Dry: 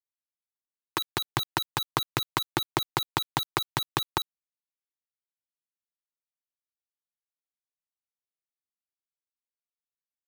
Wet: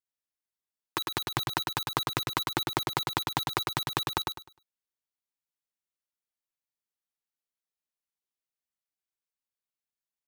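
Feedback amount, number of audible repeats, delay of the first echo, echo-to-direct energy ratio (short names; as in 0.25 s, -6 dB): 25%, 3, 0.102 s, -3.0 dB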